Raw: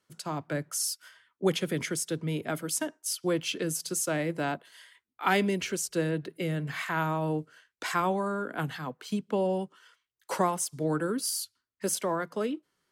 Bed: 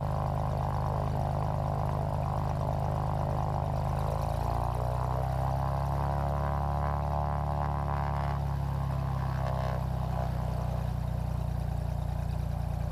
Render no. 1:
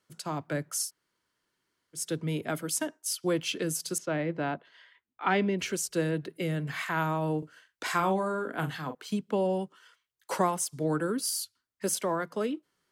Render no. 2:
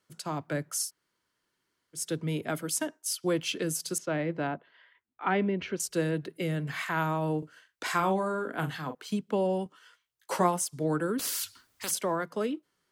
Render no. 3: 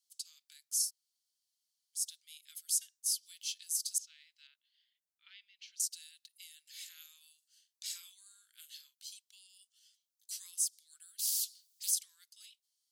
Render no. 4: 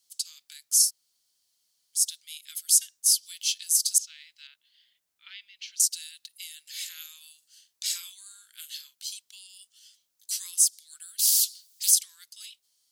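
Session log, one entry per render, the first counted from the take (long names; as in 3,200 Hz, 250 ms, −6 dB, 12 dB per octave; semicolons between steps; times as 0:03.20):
0:00.86–0:01.98: fill with room tone, crossfade 0.10 s; 0:03.98–0:05.59: high-frequency loss of the air 230 metres; 0:07.38–0:08.95: double-tracking delay 42 ms −9 dB
0:04.47–0:05.80: high-frequency loss of the air 280 metres; 0:09.64–0:10.62: double-tracking delay 17 ms −7 dB; 0:11.19–0:11.91: every bin compressed towards the loudest bin 4 to 1
inverse Chebyshev high-pass filter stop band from 690 Hz, stop band 80 dB
level +12 dB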